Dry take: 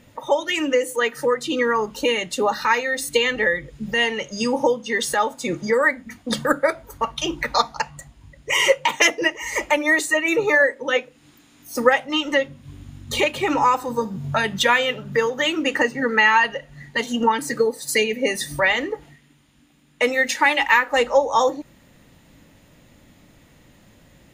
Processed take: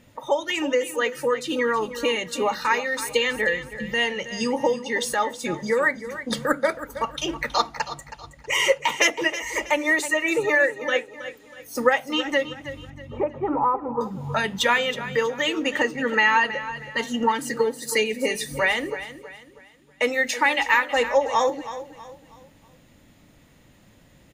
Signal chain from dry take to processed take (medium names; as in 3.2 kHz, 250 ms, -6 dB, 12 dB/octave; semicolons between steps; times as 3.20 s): 12.90–14.01 s: low-pass 1.2 kHz 24 dB/octave; on a send: feedback delay 321 ms, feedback 37%, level -13 dB; on the sum: trim -3 dB